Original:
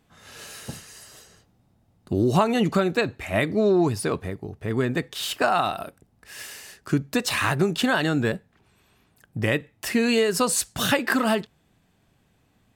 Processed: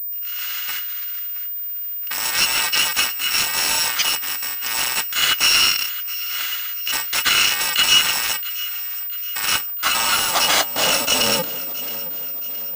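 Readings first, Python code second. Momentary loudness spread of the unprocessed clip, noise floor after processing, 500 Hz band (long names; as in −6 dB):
18 LU, −27 dBFS, −8.0 dB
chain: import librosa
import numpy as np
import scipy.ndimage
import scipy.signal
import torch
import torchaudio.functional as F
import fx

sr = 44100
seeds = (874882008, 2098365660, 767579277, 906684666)

p1 = fx.bit_reversed(x, sr, seeds[0], block=128)
p2 = scipy.signal.sosfilt(scipy.signal.butter(2, 62.0, 'highpass', fs=sr, output='sos'), p1)
p3 = fx.low_shelf(p2, sr, hz=420.0, db=11.0)
p4 = fx.leveller(p3, sr, passes=3)
p5 = fx.rider(p4, sr, range_db=10, speed_s=0.5)
p6 = p4 + (p5 * 10.0 ** (-3.0 / 20.0))
p7 = fx.small_body(p6, sr, hz=(290.0, 2900.0), ring_ms=90, db=15)
p8 = 10.0 ** (-9.0 / 20.0) * np.tanh(p7 / 10.0 ** (-9.0 / 20.0))
p9 = p8 + fx.echo_feedback(p8, sr, ms=670, feedback_pct=48, wet_db=-16.0, dry=0)
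p10 = fx.filter_sweep_highpass(p9, sr, from_hz=1700.0, to_hz=470.0, start_s=9.35, end_s=11.29, q=1.8)
y = fx.pwm(p10, sr, carrier_hz=15000.0)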